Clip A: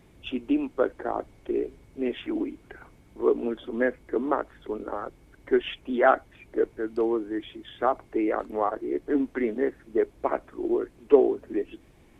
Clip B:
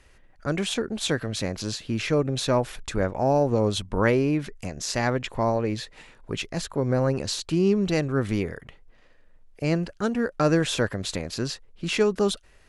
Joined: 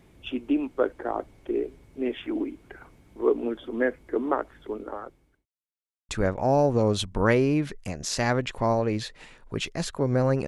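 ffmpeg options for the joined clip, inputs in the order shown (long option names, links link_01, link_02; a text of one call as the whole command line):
ffmpeg -i cue0.wav -i cue1.wav -filter_complex "[0:a]apad=whole_dur=10.47,atrim=end=10.47,asplit=2[link_01][link_02];[link_01]atrim=end=5.46,asetpts=PTS-STARTPTS,afade=type=out:start_time=4.41:duration=1.05:curve=qsin[link_03];[link_02]atrim=start=5.46:end=6.09,asetpts=PTS-STARTPTS,volume=0[link_04];[1:a]atrim=start=2.86:end=7.24,asetpts=PTS-STARTPTS,afade=type=in:duration=0.004:curve=hsin[link_05];[link_03][link_04][link_05]concat=n=3:v=0:a=1" out.wav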